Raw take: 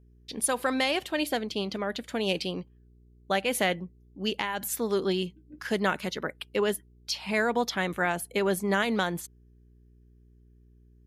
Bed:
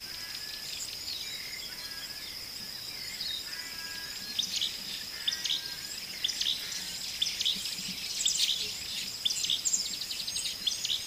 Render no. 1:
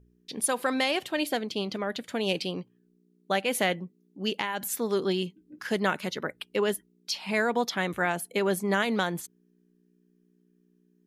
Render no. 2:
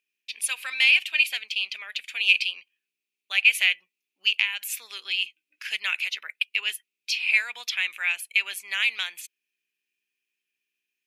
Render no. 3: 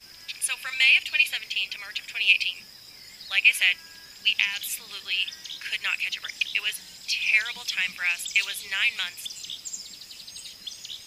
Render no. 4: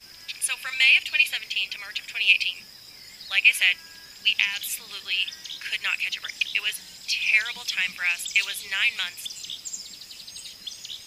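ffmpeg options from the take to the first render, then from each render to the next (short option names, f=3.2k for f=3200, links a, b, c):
-af "bandreject=f=60:t=h:w=4,bandreject=f=120:t=h:w=4"
-af "highpass=f=2.5k:t=q:w=9.3"
-filter_complex "[1:a]volume=-7dB[a];[0:a][a]amix=inputs=2:normalize=0"
-af "volume=1dB"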